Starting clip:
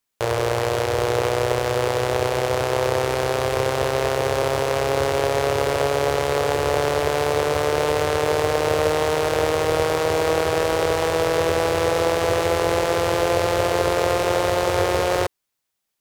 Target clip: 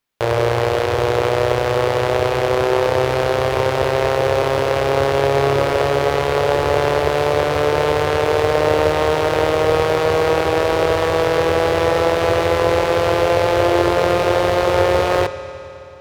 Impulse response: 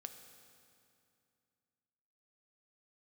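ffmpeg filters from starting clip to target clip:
-filter_complex "[0:a]asplit=2[a][b];[1:a]atrim=start_sample=2205,asetrate=33075,aresample=44100,lowpass=5.2k[c];[b][c]afir=irnorm=-1:irlink=0,volume=5dB[d];[a][d]amix=inputs=2:normalize=0,volume=-2.5dB"

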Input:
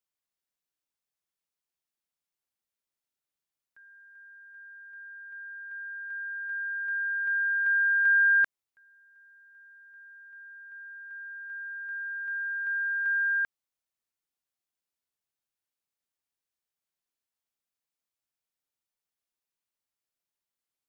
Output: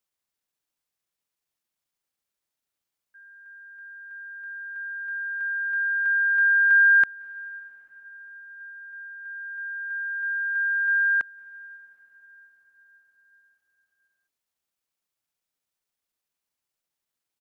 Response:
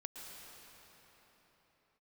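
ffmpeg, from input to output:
-filter_complex "[0:a]atempo=1.2,asplit=2[a][b];[1:a]atrim=start_sample=2205,asetrate=27783,aresample=44100[c];[b][c]afir=irnorm=-1:irlink=0,volume=-17.5dB[d];[a][d]amix=inputs=2:normalize=0,volume=4dB"

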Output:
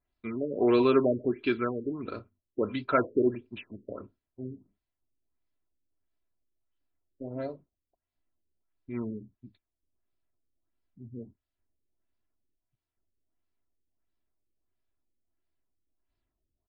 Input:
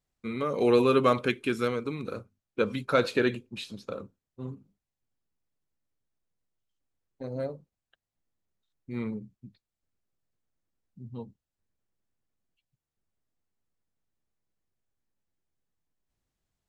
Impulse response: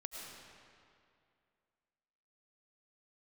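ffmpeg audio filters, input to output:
-af "aecho=1:1:3:0.56,afftfilt=real='re*lt(b*sr/1024,550*pow(5400/550,0.5+0.5*sin(2*PI*1.5*pts/sr)))':imag='im*lt(b*sr/1024,550*pow(5400/550,0.5+0.5*sin(2*PI*1.5*pts/sr)))':win_size=1024:overlap=0.75,volume=-1dB"

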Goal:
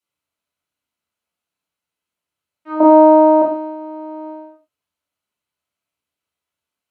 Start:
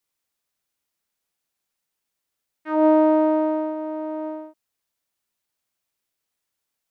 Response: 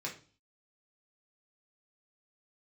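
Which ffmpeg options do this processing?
-filter_complex "[0:a]asettb=1/sr,asplit=3[a][b][c];[a]atrim=end=2.804[d];[b]atrim=start=2.8:end=3.42,asetpts=PTS-STARTPTS,afade=t=in:d=0.004:c=qsin,afade=t=out:st=0.616:d=0.004:c=qsin,equalizer=f=650:w=0.48:g=11.5[e];[c]atrim=start=3.416[f];[d][e]acrossfade=d=0.004:c1=hsin:c2=qsin[g];[g][f]acrossfade=d=0.004:c1=qsin:c2=hsin[h];[1:a]atrim=start_sample=2205,atrim=end_sample=3969,asetrate=25578,aresample=44100[i];[h][i]afir=irnorm=-1:irlink=0,volume=-4dB"

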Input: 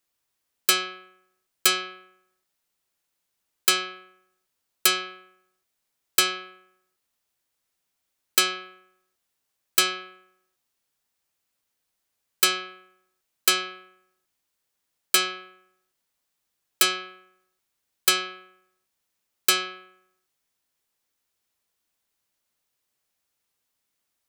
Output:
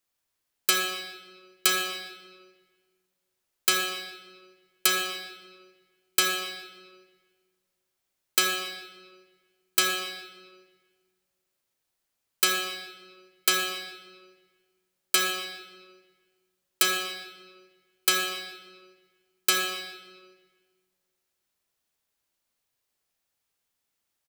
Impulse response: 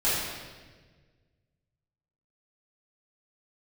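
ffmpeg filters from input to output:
-filter_complex "[0:a]asplit=2[a][b];[b]adelay=148,lowpass=f=4.4k:p=1,volume=-18dB,asplit=2[c][d];[d]adelay=148,lowpass=f=4.4k:p=1,volume=0.52,asplit=2[e][f];[f]adelay=148,lowpass=f=4.4k:p=1,volume=0.52,asplit=2[g][h];[h]adelay=148,lowpass=f=4.4k:p=1,volume=0.52[i];[a][c][e][g][i]amix=inputs=5:normalize=0,asplit=2[j][k];[1:a]atrim=start_sample=2205,adelay=33[l];[k][l]afir=irnorm=-1:irlink=0,volume=-16.5dB[m];[j][m]amix=inputs=2:normalize=0,volume=-3dB"

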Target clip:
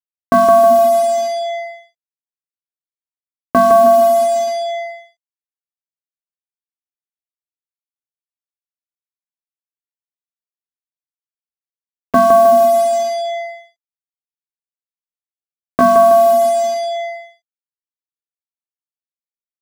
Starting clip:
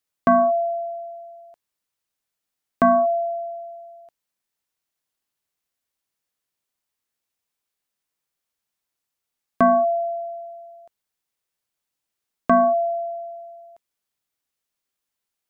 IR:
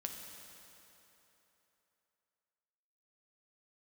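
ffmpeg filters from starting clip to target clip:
-filter_complex "[0:a]aemphasis=mode=reproduction:type=75kf,asplit=2[a][b];[b]aecho=0:1:119|238|357|476|595|714:0.562|0.27|0.13|0.0622|0.0299|0.0143[c];[a][c]amix=inputs=2:normalize=0,atempo=0.79,bandreject=f=60:t=h:w=6,bandreject=f=120:t=h:w=6,bandreject=f=180:t=h:w=6,bandreject=f=240:t=h:w=6,acrusher=bits=4:mix=0:aa=0.5,volume=5.5dB"

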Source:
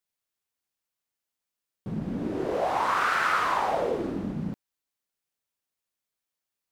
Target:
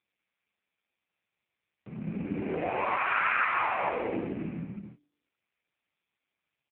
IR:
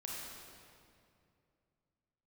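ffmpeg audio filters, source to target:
-filter_complex "[0:a]lowpass=f=2.4k:t=q:w=5.3,asettb=1/sr,asplit=3[a][b][c];[a]atrim=end=2.034[d];[b]atrim=start=2.03:end=4.17,asetpts=PTS-STARTPTS,afade=t=in:d=0.004:c=qsin,afade=t=out:st=2.136:d=0.004:c=qsin,lowshelf=f=160:g=6[e];[c]atrim=start=4.166[f];[d][e]acrossfade=d=0.004:c1=hsin:c2=qsin[g];[g][f]acrossfade=d=0.004:c1=qsin:c2=hsin,asplit=2[h][i];[i]adelay=24,volume=-8dB[j];[h][j]amix=inputs=2:normalize=0,bandreject=f=145.8:t=h:w=4,bandreject=f=291.6:t=h:w=4[k];[1:a]atrim=start_sample=2205,afade=t=out:st=0.42:d=0.01,atrim=end_sample=18963,asetrate=38808,aresample=44100[l];[k][l]afir=irnorm=-1:irlink=0,volume=-3dB" -ar 8000 -c:a libopencore_amrnb -b:a 5150

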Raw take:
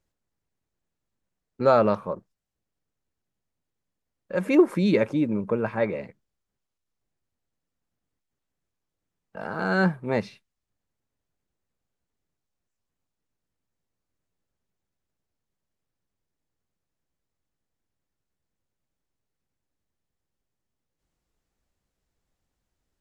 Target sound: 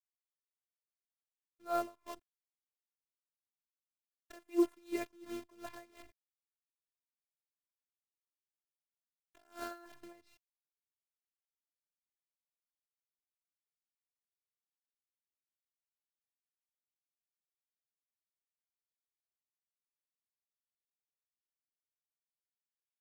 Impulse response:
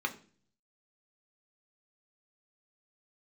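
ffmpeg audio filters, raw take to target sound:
-filter_complex "[0:a]asettb=1/sr,asplit=3[a][b][c];[a]atrim=end=9.714[d];[b]atrim=start=9.71:end=10.13,asetpts=PTS-STARTPTS,afade=t=in:d=0.004:c=qsin,afade=t=out:st=0.416:d=0.004:c=qsin,equalizer=f=1.1k:t=o:w=2.7:g=5.5[e];[c]atrim=start=10.126[f];[d][e]acrossfade=d=0.004:c1=hsin:c2=qsin[g];[g][f]acrossfade=d=0.004:c1=qsin:c2=hsin,acrusher=bits=6:dc=4:mix=0:aa=0.000001,afftfilt=real='hypot(re,im)*cos(PI*b)':imag='0':win_size=512:overlap=0.75,aeval=exprs='val(0)*pow(10,-25*(0.5-0.5*cos(2*PI*2.8*n/s))/20)':c=same,volume=-9dB"

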